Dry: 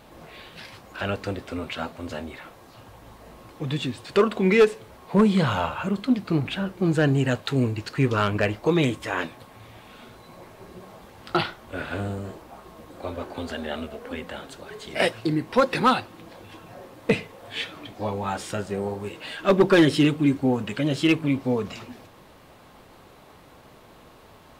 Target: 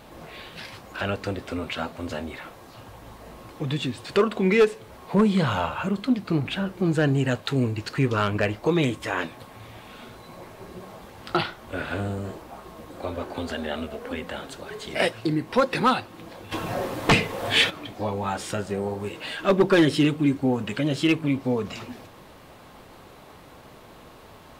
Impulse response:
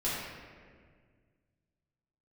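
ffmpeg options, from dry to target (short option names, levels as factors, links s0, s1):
-filter_complex "[0:a]asplit=2[s0][s1];[s1]acompressor=threshold=0.0282:ratio=6,volume=0.841[s2];[s0][s2]amix=inputs=2:normalize=0,asplit=3[s3][s4][s5];[s3]afade=t=out:st=16.51:d=0.02[s6];[s4]aeval=exprs='0.355*sin(PI/2*2.51*val(0)/0.355)':c=same,afade=t=in:st=16.51:d=0.02,afade=t=out:st=17.69:d=0.02[s7];[s5]afade=t=in:st=17.69:d=0.02[s8];[s6][s7][s8]amix=inputs=3:normalize=0,volume=0.75"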